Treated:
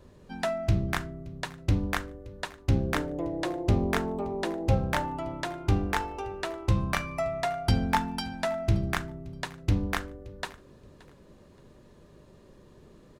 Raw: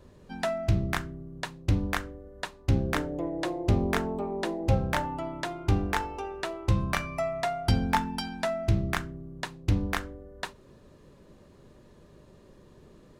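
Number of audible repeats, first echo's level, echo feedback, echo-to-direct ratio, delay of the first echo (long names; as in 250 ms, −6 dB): 2, −22.0 dB, 27%, −21.5 dB, 574 ms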